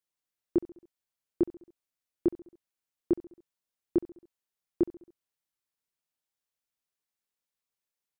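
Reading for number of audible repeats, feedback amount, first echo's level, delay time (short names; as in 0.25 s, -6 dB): 3, 54%, -19.0 dB, 68 ms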